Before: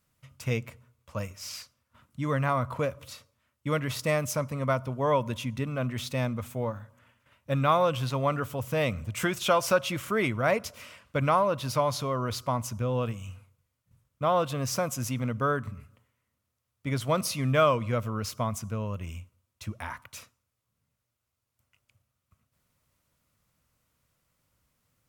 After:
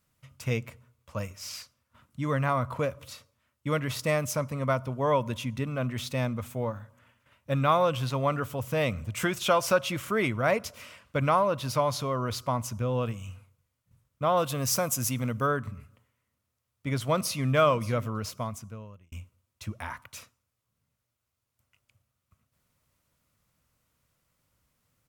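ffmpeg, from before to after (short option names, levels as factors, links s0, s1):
-filter_complex "[0:a]asettb=1/sr,asplit=3[s0][s1][s2];[s0]atrim=end=14.374[s3];[s1]atrim=start=14.37:end=15.47,asetpts=PTS-STARTPTS,afade=t=in:d=0.004:c=qsin,afade=t=out:st=1.096:d=0.004:c=qsin,highshelf=f=6700:g=11.5[s4];[s2]atrim=start=15.466[s5];[s3][s4]acrossfade=d=0.004:c1=hsin:c2=qsin[s6];[s6][s5]acrossfade=d=0.004:c1=qsin:c2=hsin,asplit=2[s7][s8];[s8]afade=t=in:st=16.98:d=0.01,afade=t=out:st=17.48:d=0.01,aecho=0:1:580|1160:0.149624|0.0299247[s9];[s7][s9]amix=inputs=2:normalize=0,asplit=2[s10][s11];[s10]atrim=end=19.12,asetpts=PTS-STARTPTS,afade=t=out:st=18.06:d=1.06[s12];[s11]atrim=start=19.12,asetpts=PTS-STARTPTS,afade=t=in:d=0.004:c=hsin[s13];[s12][s13]concat=n=2:v=0:a=1"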